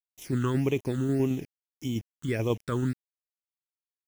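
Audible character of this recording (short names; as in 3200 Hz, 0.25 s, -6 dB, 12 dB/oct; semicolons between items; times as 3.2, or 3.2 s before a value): tremolo saw down 9.2 Hz, depth 35%; a quantiser's noise floor 8-bit, dither none; phasing stages 8, 1.7 Hz, lowest notch 670–1500 Hz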